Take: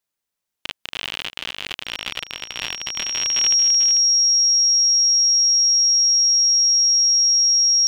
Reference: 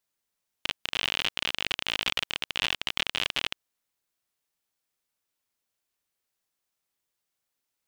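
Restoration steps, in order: notch 5600 Hz, Q 30; inverse comb 0.443 s -11 dB

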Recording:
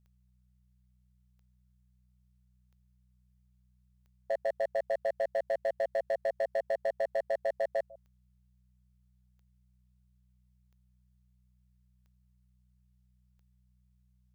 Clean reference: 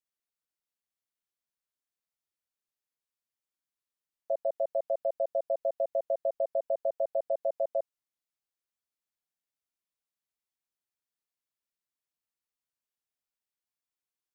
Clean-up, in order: clip repair -25.5 dBFS; de-click; de-hum 61.8 Hz, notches 3; inverse comb 0.15 s -22.5 dB

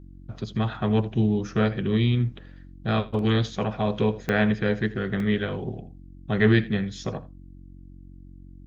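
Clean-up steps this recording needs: de-hum 45.7 Hz, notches 7; interpolate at 4.29/5.2, 1.5 ms; inverse comb 81 ms -19.5 dB

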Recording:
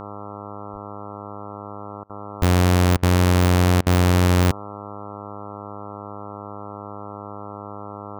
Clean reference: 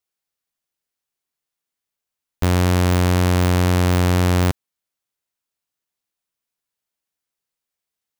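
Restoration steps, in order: de-hum 102.5 Hz, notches 13; 0.72–0.84 HPF 140 Hz 24 dB/oct; interpolate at 2.04/2.97/3.81, 55 ms

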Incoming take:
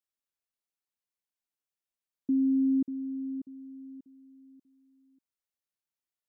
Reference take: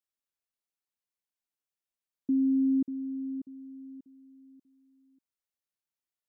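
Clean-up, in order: none needed

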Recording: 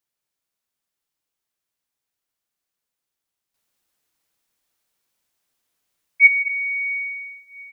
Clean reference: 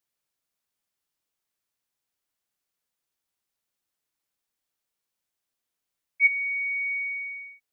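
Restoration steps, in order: inverse comb 0.219 s -8 dB; gain 0 dB, from 3.54 s -8.5 dB

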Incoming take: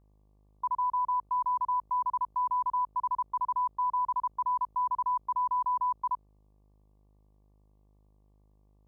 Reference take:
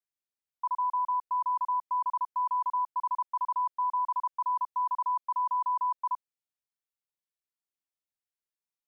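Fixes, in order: de-hum 51.2 Hz, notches 23

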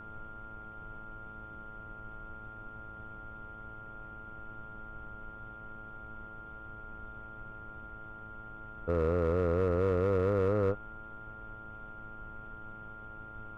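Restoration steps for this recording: clip repair -22 dBFS; de-hum 108.7 Hz, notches 13; notch 1400 Hz, Q 30; noise print and reduce 30 dB

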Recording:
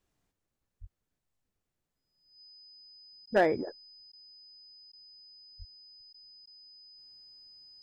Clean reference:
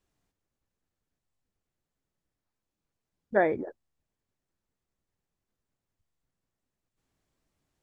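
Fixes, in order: clip repair -16.5 dBFS; notch 5000 Hz, Q 30; 0.8–0.92 HPF 140 Hz 24 dB/oct; 5.58–5.7 HPF 140 Hz 24 dB/oct; interpolate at 3.26/4.12/4.92/6.13/6.46, 11 ms

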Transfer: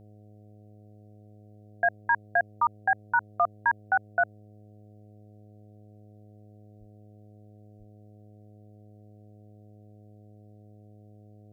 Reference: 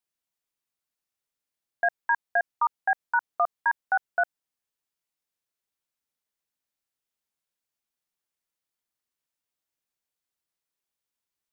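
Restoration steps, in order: de-hum 104.9 Hz, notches 7; de-plosive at 6.79/7.78

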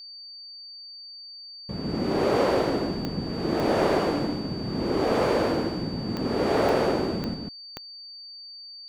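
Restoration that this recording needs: de-click; notch 4600 Hz, Q 30; inverse comb 0.148 s -4 dB

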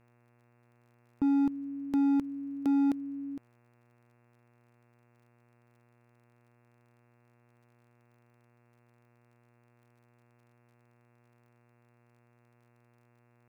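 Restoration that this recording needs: clip repair -23 dBFS; de-click; de-hum 119.7 Hz, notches 23

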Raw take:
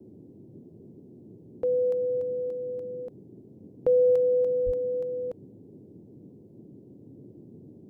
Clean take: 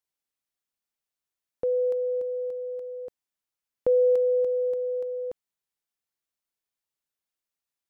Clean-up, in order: 4.65–4.77 HPF 140 Hz 24 dB/oct; noise print and reduce 30 dB

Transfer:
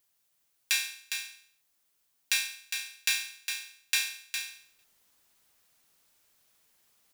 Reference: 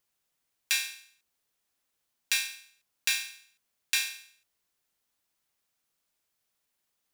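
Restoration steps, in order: expander -66 dBFS, range -21 dB; inverse comb 0.408 s -7 dB; gain 0 dB, from 4.38 s -10 dB

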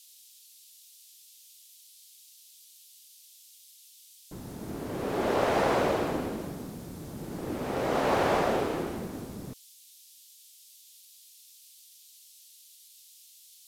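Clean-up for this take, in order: noise print and reduce 20 dB

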